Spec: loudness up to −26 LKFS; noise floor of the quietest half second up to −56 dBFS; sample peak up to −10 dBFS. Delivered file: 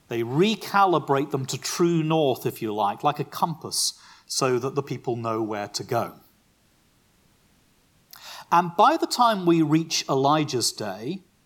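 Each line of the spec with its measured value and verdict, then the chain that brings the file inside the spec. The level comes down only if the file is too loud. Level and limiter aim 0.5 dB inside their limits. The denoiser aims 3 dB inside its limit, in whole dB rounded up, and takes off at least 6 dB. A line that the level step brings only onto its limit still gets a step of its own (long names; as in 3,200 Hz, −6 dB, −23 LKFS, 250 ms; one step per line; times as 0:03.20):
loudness −23.5 LKFS: out of spec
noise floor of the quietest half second −62 dBFS: in spec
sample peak −6.0 dBFS: out of spec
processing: level −3 dB
brickwall limiter −10.5 dBFS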